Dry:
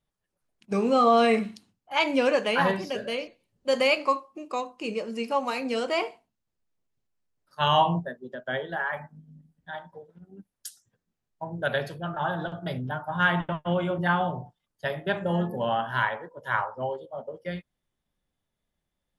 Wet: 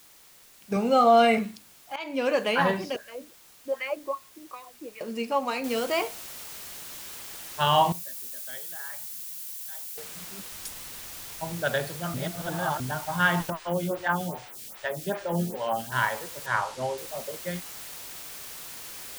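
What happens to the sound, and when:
0.76–1.38 comb 1.4 ms
1.96–2.41 fade in, from -18.5 dB
2.96–5.01 wah 2.6 Hz 210–2000 Hz, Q 3.5
5.64 noise floor step -54 dB -41 dB
7.92–9.98 pre-emphasis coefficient 0.9
10.52–11.53 low shelf 100 Hz +9.5 dB
12.14–12.8 reverse
13.5–15.92 photocell phaser 2.5 Hz
16.46–16.98 LPF 7500 Hz

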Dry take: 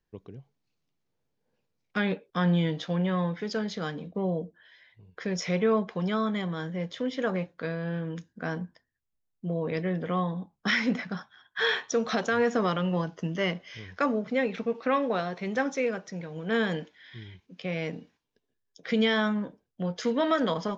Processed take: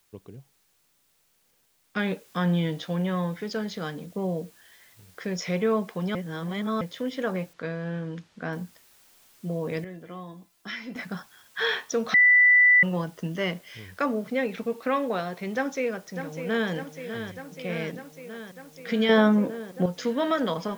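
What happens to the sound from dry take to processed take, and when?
1.99 noise floor step -68 dB -58 dB
6.15–6.81 reverse
7.53–8.53 LPF 4600 Hz
9.84–10.96 resonator 340 Hz, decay 0.19 s, mix 80%
12.14–12.83 bleep 1980 Hz -13.5 dBFS
15.55–16.71 echo throw 0.6 s, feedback 75%, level -9 dB
19.09–19.86 bell 380 Hz +11 dB 2.7 oct

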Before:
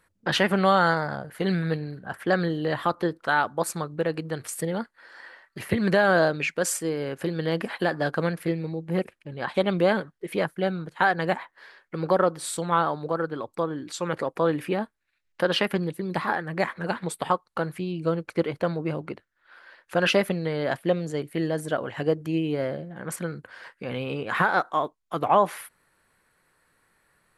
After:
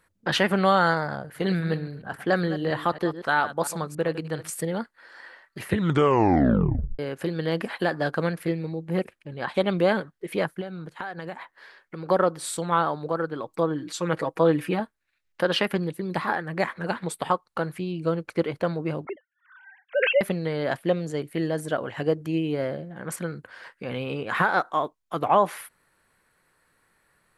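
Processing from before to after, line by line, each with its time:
1.19–4.52 reverse delay 0.138 s, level -13 dB
5.66 tape stop 1.33 s
10.61–12.09 compressor 4:1, threshold -32 dBFS
13.45–14.8 comb 6.3 ms
19.05–20.21 sine-wave speech

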